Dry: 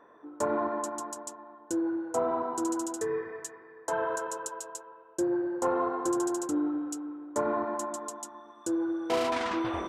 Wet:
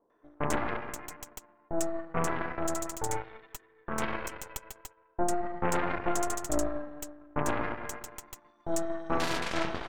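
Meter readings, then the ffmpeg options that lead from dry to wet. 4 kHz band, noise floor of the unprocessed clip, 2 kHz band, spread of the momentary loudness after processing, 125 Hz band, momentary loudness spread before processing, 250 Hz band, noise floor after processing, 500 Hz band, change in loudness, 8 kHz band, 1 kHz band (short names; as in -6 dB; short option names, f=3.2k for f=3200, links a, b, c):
+2.5 dB, -54 dBFS, +3.5 dB, 14 LU, +10.0 dB, 12 LU, -5.5 dB, -66 dBFS, -3.5 dB, -2.0 dB, 0.0 dB, -1.5 dB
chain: -filter_complex "[0:a]acrossover=split=900[a][b];[b]adelay=100[c];[a][c]amix=inputs=2:normalize=0,aeval=exprs='0.126*(cos(1*acos(clip(val(0)/0.126,-1,1)))-cos(1*PI/2))+0.0355*(cos(3*acos(clip(val(0)/0.126,-1,1)))-cos(3*PI/2))+0.0398*(cos(4*acos(clip(val(0)/0.126,-1,1)))-cos(4*PI/2))+0.00141*(cos(5*acos(clip(val(0)/0.126,-1,1)))-cos(5*PI/2))':c=same,volume=2dB"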